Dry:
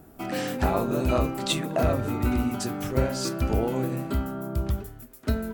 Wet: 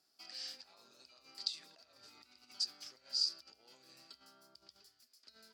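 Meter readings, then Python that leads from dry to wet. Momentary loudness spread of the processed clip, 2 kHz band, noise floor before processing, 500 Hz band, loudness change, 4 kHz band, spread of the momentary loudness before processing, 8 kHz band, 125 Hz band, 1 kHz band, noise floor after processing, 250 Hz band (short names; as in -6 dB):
24 LU, -24.5 dB, -50 dBFS, -40.0 dB, -11.5 dB, -3.5 dB, 6 LU, -13.0 dB, under -40 dB, -33.0 dB, -76 dBFS, under -40 dB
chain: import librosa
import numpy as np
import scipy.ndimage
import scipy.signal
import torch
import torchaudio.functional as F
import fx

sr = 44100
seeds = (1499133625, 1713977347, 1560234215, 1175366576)

y = fx.over_compress(x, sr, threshold_db=-30.0, ratio=-1.0)
y = fx.bandpass_q(y, sr, hz=4800.0, q=11.0)
y = y * librosa.db_to_amplitude(4.5)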